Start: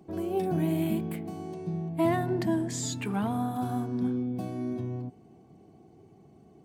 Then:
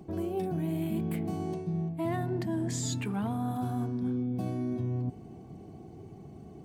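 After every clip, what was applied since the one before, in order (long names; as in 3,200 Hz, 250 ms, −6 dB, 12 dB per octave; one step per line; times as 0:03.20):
low-shelf EQ 120 Hz +10 dB
reversed playback
downward compressor 6 to 1, threshold −35 dBFS, peak gain reduction 14 dB
reversed playback
level +5.5 dB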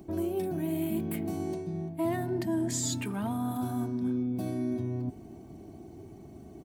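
high-shelf EQ 8,400 Hz +10 dB
comb filter 3.2 ms, depth 43%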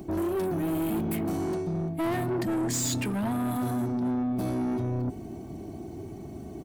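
soft clipping −33 dBFS, distortion −10 dB
level +8 dB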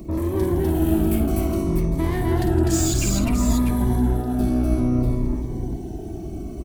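sub-octave generator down 2 octaves, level +1 dB
on a send: multi-tap delay 50/163/249/252/309/645 ms −8.5/−11.5/−5.5/−4/−11.5/−7 dB
on the sum: phaser whose notches keep moving one way falling 0.59 Hz
level +3 dB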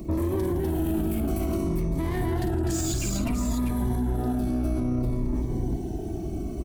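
brickwall limiter −19 dBFS, peak gain reduction 10 dB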